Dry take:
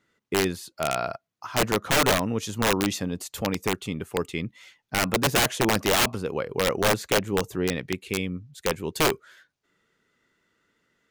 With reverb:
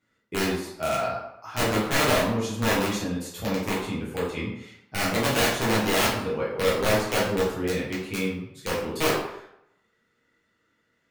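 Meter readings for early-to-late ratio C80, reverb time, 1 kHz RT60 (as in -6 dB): 6.0 dB, 0.80 s, 0.80 s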